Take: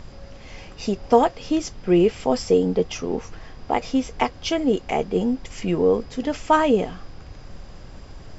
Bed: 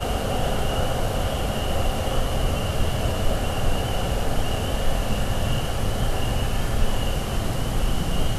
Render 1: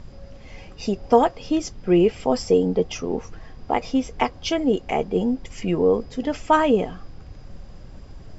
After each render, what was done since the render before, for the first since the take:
broadband denoise 6 dB, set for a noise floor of −42 dBFS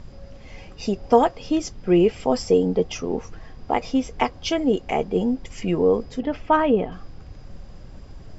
0:06.20–0:06.92: high-frequency loss of the air 240 metres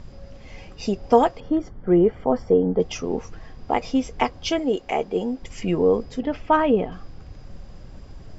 0:01.40–0:02.80: Savitzky-Golay smoothing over 41 samples
0:04.59–0:05.41: bass and treble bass −9 dB, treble 0 dB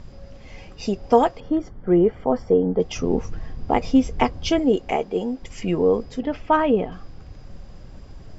0:02.96–0:04.96: low-shelf EQ 320 Hz +9 dB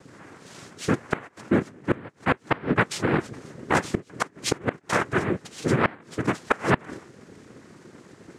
cochlear-implant simulation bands 3
gate with flip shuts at −7 dBFS, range −25 dB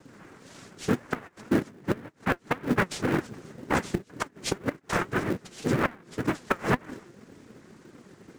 flanger 1.9 Hz, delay 3 ms, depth 2.9 ms, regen +66%
in parallel at −10 dB: sample-rate reduction 1,200 Hz, jitter 20%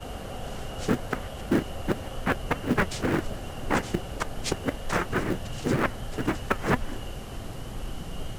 mix in bed −12.5 dB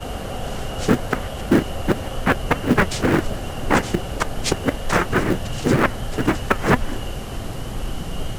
level +8 dB
brickwall limiter −3 dBFS, peak gain reduction 2 dB

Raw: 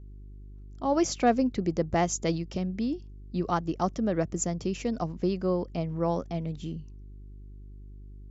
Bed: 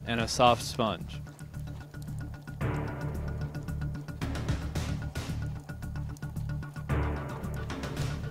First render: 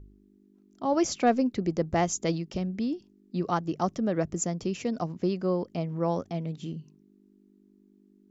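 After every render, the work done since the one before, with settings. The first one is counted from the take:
hum removal 50 Hz, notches 3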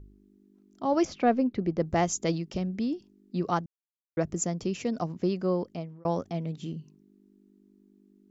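0:01.05–0:01.80: high-frequency loss of the air 210 metres
0:03.66–0:04.17: silence
0:05.60–0:06.05: fade out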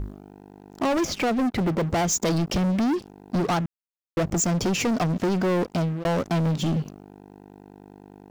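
downward compressor 6 to 1, threshold −29 dBFS, peak gain reduction 11.5 dB
leveller curve on the samples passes 5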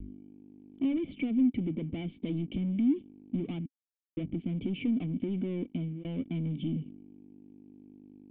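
pitch vibrato 0.42 Hz 11 cents
formant resonators in series i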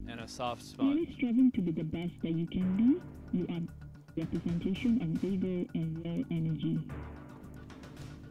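mix in bed −14 dB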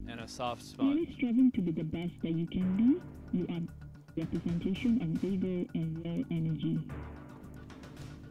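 no processing that can be heard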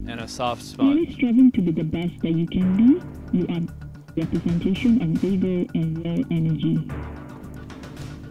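level +11 dB

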